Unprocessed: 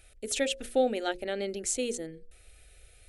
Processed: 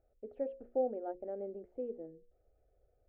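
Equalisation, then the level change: four-pole ladder low-pass 840 Hz, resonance 30%; bass shelf 170 Hz -8.5 dB; -2.0 dB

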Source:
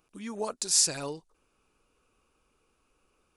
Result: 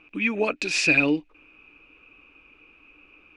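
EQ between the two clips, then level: peaking EQ 300 Hz +14.5 dB 0.24 oct; dynamic bell 1 kHz, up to -7 dB, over -53 dBFS, Q 2; resonant low-pass 2.5 kHz, resonance Q 13; +8.5 dB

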